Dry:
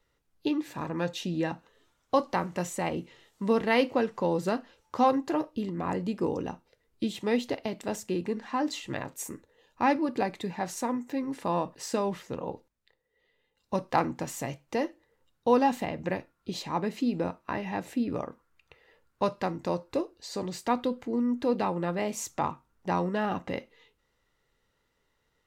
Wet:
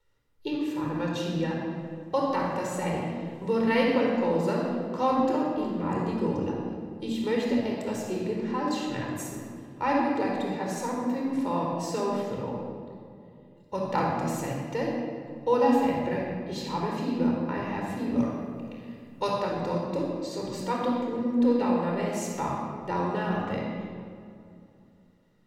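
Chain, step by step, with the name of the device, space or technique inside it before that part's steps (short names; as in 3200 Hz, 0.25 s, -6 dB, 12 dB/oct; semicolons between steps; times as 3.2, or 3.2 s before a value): 18.18–19.3 high shelf 2800 Hz +10.5 dB; compressed reverb return (on a send at -13 dB: reverb RT60 2.9 s, pre-delay 31 ms + compressor, threshold -40 dBFS, peak gain reduction 19.5 dB); on the sum: shoebox room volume 3800 m³, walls mixed, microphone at 4.5 m; gain -5.5 dB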